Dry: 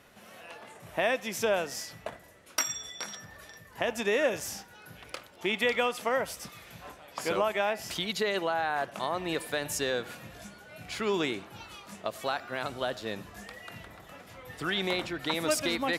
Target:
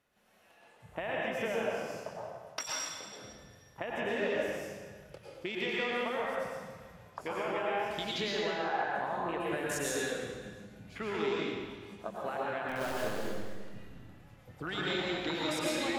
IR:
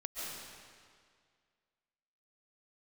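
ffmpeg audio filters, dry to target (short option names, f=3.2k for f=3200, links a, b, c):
-filter_complex "[0:a]afwtdn=0.0126,acompressor=threshold=-32dB:ratio=6,asplit=3[a][b][c];[a]afade=t=out:st=12.68:d=0.02[d];[b]acrusher=bits=7:dc=4:mix=0:aa=0.000001,afade=t=in:st=12.68:d=0.02,afade=t=out:st=13.39:d=0.02[e];[c]afade=t=in:st=13.39:d=0.02[f];[d][e][f]amix=inputs=3:normalize=0[g];[1:a]atrim=start_sample=2205,asetrate=57330,aresample=44100[h];[g][h]afir=irnorm=-1:irlink=0,volume=4dB"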